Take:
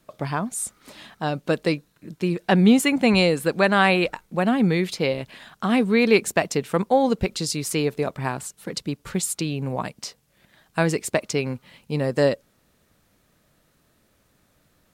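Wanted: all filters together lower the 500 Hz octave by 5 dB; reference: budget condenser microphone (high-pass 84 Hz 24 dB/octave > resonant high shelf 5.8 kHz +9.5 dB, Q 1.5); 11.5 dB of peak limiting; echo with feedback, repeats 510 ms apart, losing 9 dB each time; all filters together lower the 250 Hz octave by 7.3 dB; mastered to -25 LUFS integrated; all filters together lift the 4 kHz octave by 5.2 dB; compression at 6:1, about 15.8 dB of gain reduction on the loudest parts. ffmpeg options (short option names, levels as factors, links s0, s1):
-af "equalizer=f=250:t=o:g=-9,equalizer=f=500:t=o:g=-3.5,equalizer=f=4000:t=o:g=8.5,acompressor=threshold=0.0282:ratio=6,alimiter=level_in=1.06:limit=0.0631:level=0:latency=1,volume=0.944,highpass=f=84:w=0.5412,highpass=f=84:w=1.3066,highshelf=f=5800:t=q:w=1.5:g=9.5,aecho=1:1:510|1020|1530|2040:0.355|0.124|0.0435|0.0152,volume=2.24"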